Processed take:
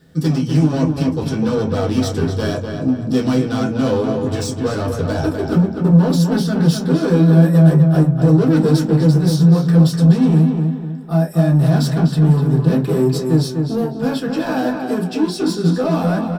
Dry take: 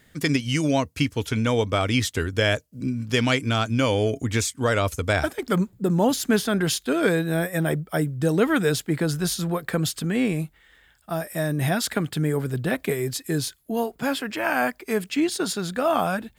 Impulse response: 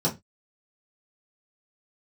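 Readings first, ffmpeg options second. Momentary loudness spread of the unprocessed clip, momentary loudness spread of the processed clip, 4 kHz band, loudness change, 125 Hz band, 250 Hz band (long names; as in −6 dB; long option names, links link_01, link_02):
5 LU, 9 LU, −1.0 dB, +8.5 dB, +13.0 dB, +10.5 dB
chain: -filter_complex "[0:a]asoftclip=type=hard:threshold=-24.5dB,asplit=2[link_01][link_02];[link_02]adelay=250,lowpass=frequency=3100:poles=1,volume=-5dB,asplit=2[link_03][link_04];[link_04]adelay=250,lowpass=frequency=3100:poles=1,volume=0.41,asplit=2[link_05][link_06];[link_06]adelay=250,lowpass=frequency=3100:poles=1,volume=0.41,asplit=2[link_07][link_08];[link_08]adelay=250,lowpass=frequency=3100:poles=1,volume=0.41,asplit=2[link_09][link_10];[link_10]adelay=250,lowpass=frequency=3100:poles=1,volume=0.41[link_11];[link_01][link_03][link_05][link_07][link_09][link_11]amix=inputs=6:normalize=0[link_12];[1:a]atrim=start_sample=2205[link_13];[link_12][link_13]afir=irnorm=-1:irlink=0,volume=-7.5dB"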